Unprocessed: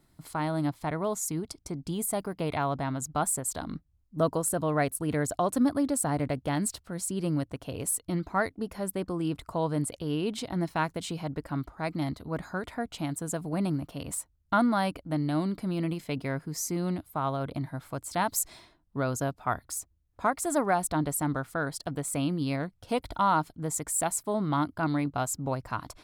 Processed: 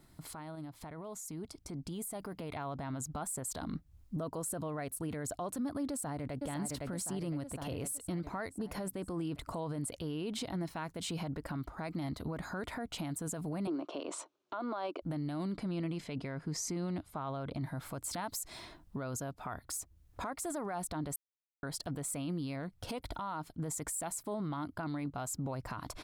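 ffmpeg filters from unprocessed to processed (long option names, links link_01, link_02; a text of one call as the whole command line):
ffmpeg -i in.wav -filter_complex "[0:a]asettb=1/sr,asplit=3[link_01][link_02][link_03];[link_01]atrim=end=0.554[link_04];[link_02]atrim=start=0.55:end=2.59,asetpts=PTS-STARTPTS,afade=type=in:duration=0.004:curve=qsin,afade=type=out:start_time=2.036:duration=0.004:curve=qsin,acompressor=threshold=-33dB:ratio=6:attack=3.2:release=140:knee=1:detection=peak[link_05];[link_03]atrim=start=2.586[link_06];[link_04][link_05]acrossfade=duration=0.004:curve1=hsin:curve2=qsin[link_07];[link_07][link_06]acrossfade=duration=0.004:curve1=qsin:curve2=hsin,asplit=2[link_08][link_09];[link_09]afade=type=in:start_time=5.9:duration=0.01,afade=type=out:start_time=6.43:duration=0.01,aecho=0:1:510|1020|1530|2040|2550|3060|3570:0.354813|0.212888|0.127733|0.0766397|0.0459838|0.0275903|0.0165542[link_10];[link_08][link_10]amix=inputs=2:normalize=0,asettb=1/sr,asplit=3[link_11][link_12][link_13];[link_11]atrim=end=13.674[link_14];[link_12]atrim=start=13.67:end=15.02,asetpts=PTS-STARTPTS,afade=type=in:duration=0.004:curve=qsin,afade=type=out:start_time=1.346:duration=0.004:curve=qsin,highpass=frequency=310:width=0.5412,highpass=frequency=310:width=1.3066,equalizer=frequency=360:width_type=q:width=4:gain=10,equalizer=frequency=610:width_type=q:width=4:gain=5,equalizer=frequency=1100:width_type=q:width=4:gain=5,equalizer=frequency=1900:width_type=q:width=4:gain=-8,equalizer=frequency=4900:width_type=q:width=4:gain=-6,lowpass=frequency=5700:width=0.5412,lowpass=frequency=5700:width=1.3066[link_15];[link_13]atrim=start=15.016[link_16];[link_14][link_15]acrossfade=duration=0.004:curve1=hsin:curve2=qsin[link_17];[link_17][link_16]acrossfade=duration=0.004:curve1=qsin:curve2=hsin,asettb=1/sr,asplit=3[link_18][link_19][link_20];[link_18]atrim=end=15.544[link_21];[link_19]atrim=start=15.54:end=17.61,asetpts=PTS-STARTPTS,afade=type=in:duration=0.004:curve=qsin,afade=type=out:start_time=2.066:duration=0.004:curve=qsin,lowpass=7000[link_22];[link_20]atrim=start=17.606[link_23];[link_21][link_22]acrossfade=duration=0.004:curve1=hsin:curve2=qsin[link_24];[link_24][link_23]acrossfade=duration=0.004:curve1=qsin:curve2=hsin,asplit=3[link_25][link_26][link_27];[link_25]atrim=end=21.16,asetpts=PTS-STARTPTS,afade=type=out:start_time=21.156:duration=0.004:curve=hsin[link_28];[link_26]atrim=start=21.16:end=21.63,asetpts=PTS-STARTPTS,volume=0[link_29];[link_27]atrim=start=21.63,asetpts=PTS-STARTPTS,afade=type=in:duration=0.004:curve=hsin[link_30];[link_28][link_29][link_30]concat=n=3:v=0:a=1,acompressor=threshold=-45dB:ratio=3,alimiter=level_in=16.5dB:limit=-24dB:level=0:latency=1:release=31,volume=-16.5dB,dynaudnorm=framelen=620:gausssize=7:maxgain=7.5dB,volume=3.5dB" out.wav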